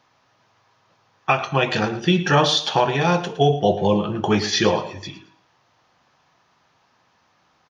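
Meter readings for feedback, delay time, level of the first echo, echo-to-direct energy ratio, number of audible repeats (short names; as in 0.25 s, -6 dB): 29%, 0.112 s, -15.0 dB, -14.5 dB, 2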